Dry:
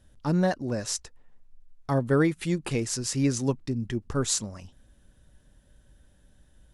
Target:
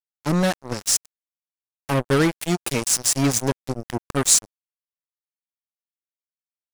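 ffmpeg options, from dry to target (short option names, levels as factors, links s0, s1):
-af "aemphasis=mode=production:type=50fm,acrusher=bits=3:mix=0:aa=0.5,volume=1.5"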